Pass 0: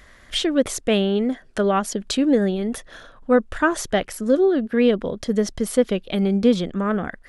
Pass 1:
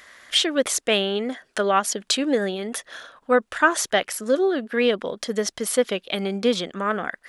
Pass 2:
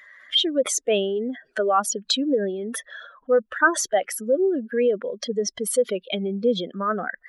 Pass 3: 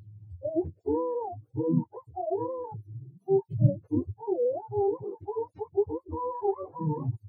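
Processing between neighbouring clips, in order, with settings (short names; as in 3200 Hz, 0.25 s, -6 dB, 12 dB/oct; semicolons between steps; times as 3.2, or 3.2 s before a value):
HPF 950 Hz 6 dB/oct; gain +5 dB
spectral contrast raised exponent 2.1
spectrum mirrored in octaves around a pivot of 440 Hz; record warp 78 rpm, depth 100 cents; gain -5 dB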